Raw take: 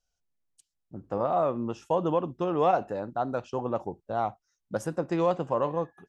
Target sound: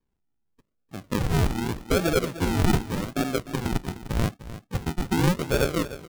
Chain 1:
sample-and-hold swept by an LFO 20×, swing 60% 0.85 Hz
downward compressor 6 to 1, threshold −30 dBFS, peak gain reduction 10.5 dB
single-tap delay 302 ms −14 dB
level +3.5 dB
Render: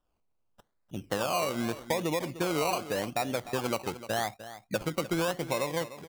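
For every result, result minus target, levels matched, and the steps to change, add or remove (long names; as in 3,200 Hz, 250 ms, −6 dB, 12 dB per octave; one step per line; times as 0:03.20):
sample-and-hold swept by an LFO: distortion −30 dB; downward compressor: peak gain reduction +10.5 dB
change: sample-and-hold swept by an LFO 63×, swing 60% 0.85 Hz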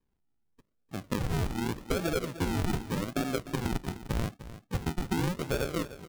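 downward compressor: peak gain reduction +11 dB
remove: downward compressor 6 to 1, threshold −30 dBFS, peak gain reduction 11 dB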